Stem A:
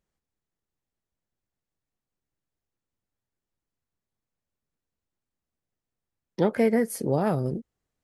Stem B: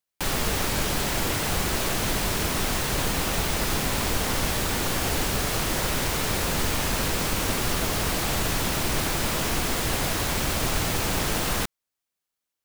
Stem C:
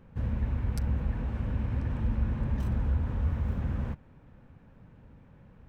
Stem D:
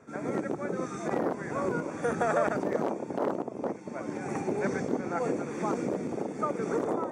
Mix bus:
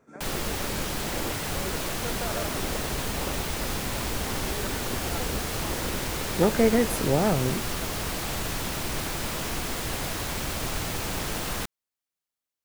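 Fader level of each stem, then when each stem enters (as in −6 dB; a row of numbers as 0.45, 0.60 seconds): +1.0, −5.0, −12.0, −7.5 decibels; 0.00, 0.00, 2.45, 0.00 seconds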